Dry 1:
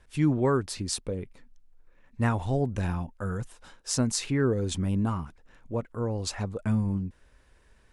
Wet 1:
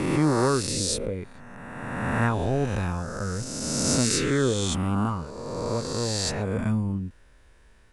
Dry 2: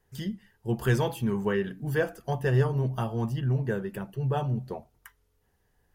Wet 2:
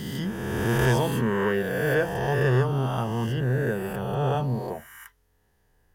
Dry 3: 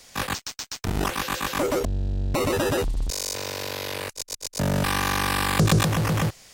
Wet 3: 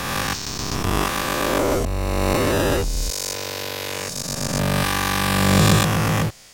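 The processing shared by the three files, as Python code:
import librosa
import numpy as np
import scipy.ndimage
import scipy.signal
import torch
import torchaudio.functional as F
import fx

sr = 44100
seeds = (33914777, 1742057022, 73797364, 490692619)

y = fx.spec_swells(x, sr, rise_s=2.04)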